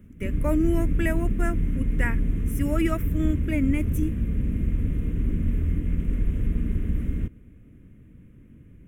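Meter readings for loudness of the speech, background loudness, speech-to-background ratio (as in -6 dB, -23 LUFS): -29.0 LUFS, -28.0 LUFS, -1.0 dB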